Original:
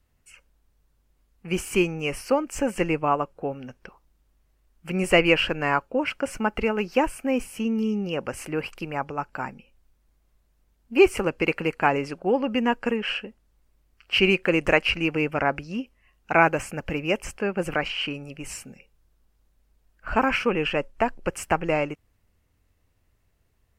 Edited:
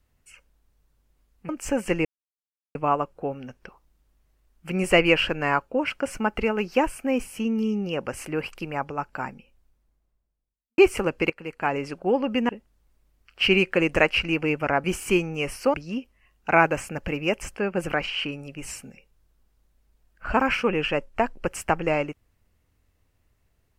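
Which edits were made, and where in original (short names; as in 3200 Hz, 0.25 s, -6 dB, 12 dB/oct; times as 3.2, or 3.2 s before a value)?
1.49–2.39 move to 15.56
2.95 insert silence 0.70 s
9.48–10.98 studio fade out
11.5–12.17 fade in, from -18.5 dB
12.69–13.21 cut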